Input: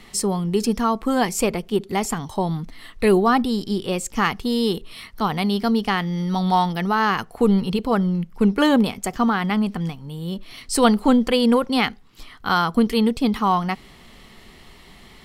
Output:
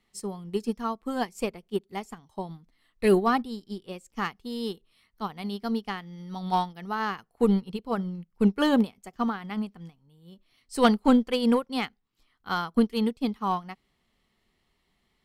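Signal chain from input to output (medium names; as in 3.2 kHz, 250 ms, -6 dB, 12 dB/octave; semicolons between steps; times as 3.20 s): Chebyshev shaper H 7 -32 dB, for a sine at -1 dBFS; saturation -9 dBFS, distortion -20 dB; upward expansion 2.5:1, over -31 dBFS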